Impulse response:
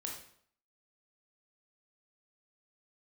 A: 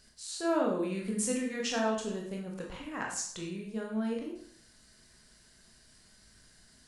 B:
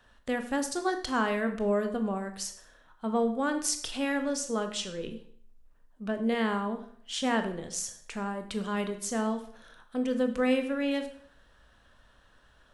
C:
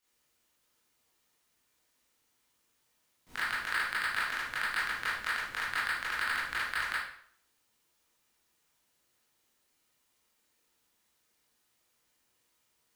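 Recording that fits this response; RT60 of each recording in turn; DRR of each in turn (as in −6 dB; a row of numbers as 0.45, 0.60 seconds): A; 0.60, 0.60, 0.60 seconds; −1.0, 7.0, −9.5 decibels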